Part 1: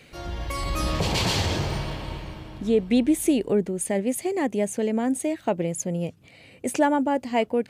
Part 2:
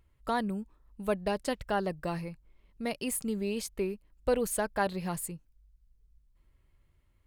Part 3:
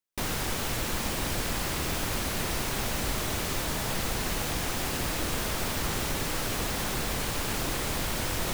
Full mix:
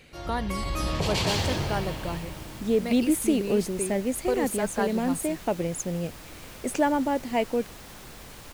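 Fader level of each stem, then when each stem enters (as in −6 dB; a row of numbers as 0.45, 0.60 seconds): −2.5, 0.0, −14.0 decibels; 0.00, 0.00, 1.10 seconds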